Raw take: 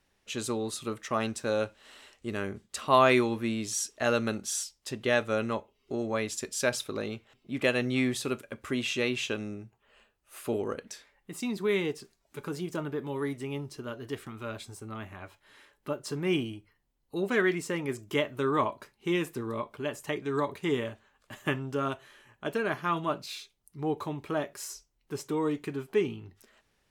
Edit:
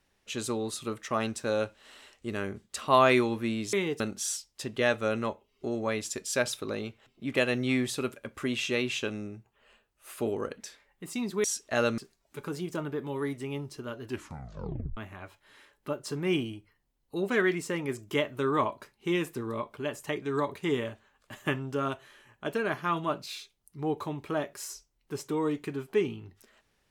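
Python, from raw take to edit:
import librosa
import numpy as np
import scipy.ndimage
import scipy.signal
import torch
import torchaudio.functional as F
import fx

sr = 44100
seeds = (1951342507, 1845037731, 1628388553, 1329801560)

y = fx.edit(x, sr, fx.swap(start_s=3.73, length_s=0.54, other_s=11.71, other_length_s=0.27),
    fx.tape_stop(start_s=14.03, length_s=0.94), tone=tone)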